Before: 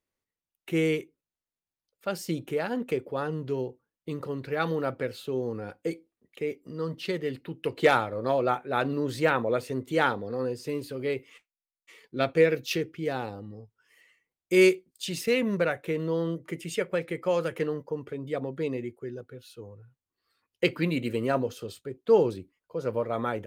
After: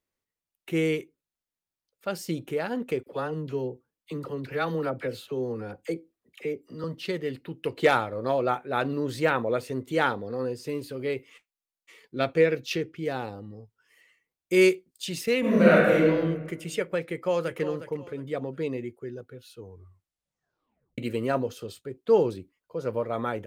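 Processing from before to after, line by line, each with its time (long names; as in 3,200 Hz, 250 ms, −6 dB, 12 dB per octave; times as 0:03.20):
0:03.03–0:06.84: all-pass dispersion lows, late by 42 ms, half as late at 830 Hz
0:12.36–0:12.96: high-shelf EQ 11,000 Hz −11 dB
0:15.40–0:16.05: thrown reverb, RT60 1.3 s, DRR −9 dB
0:17.10–0:17.60: delay throw 360 ms, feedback 30%, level −11.5 dB
0:19.60: tape stop 1.38 s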